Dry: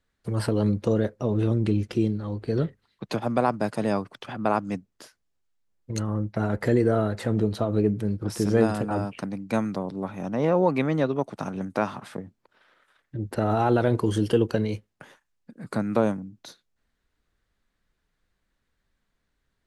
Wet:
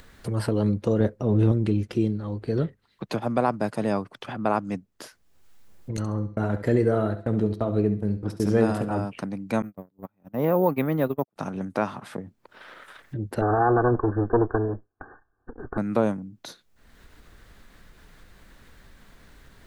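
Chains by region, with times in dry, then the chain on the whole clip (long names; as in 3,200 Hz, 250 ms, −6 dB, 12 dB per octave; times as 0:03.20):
0:01.00–0:01.52: low-shelf EQ 470 Hz +6 dB + transient designer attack −6 dB, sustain +1 dB
0:05.97–0:09.00: noise gate −32 dBFS, range −35 dB + hum removal 168.2 Hz, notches 36 + flutter between parallel walls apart 11.7 metres, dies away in 0.33 s
0:09.62–0:11.36: noise gate −27 dBFS, range −42 dB + high-shelf EQ 5,400 Hz −11 dB + bad sample-rate conversion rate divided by 3×, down filtered, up hold
0:13.41–0:15.78: lower of the sound and its delayed copy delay 2.6 ms + linear-phase brick-wall low-pass 1,800 Hz + dynamic equaliser 1,100 Hz, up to +4 dB, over −36 dBFS, Q 1.2
whole clip: high-shelf EQ 10,000 Hz +8.5 dB; upward compression, threshold −29 dBFS; high-shelf EQ 4,100 Hz −6 dB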